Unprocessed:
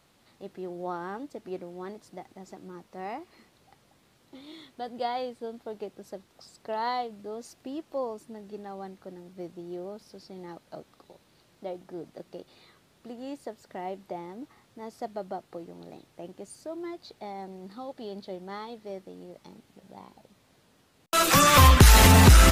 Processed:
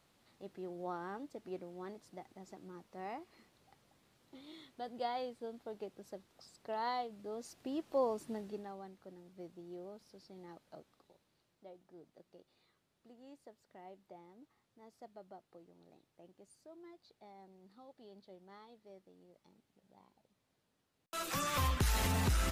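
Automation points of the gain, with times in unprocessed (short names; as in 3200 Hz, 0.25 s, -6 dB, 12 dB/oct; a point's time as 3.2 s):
7.08 s -7.5 dB
8.34 s +1.5 dB
8.83 s -10.5 dB
10.67 s -10.5 dB
11.66 s -18 dB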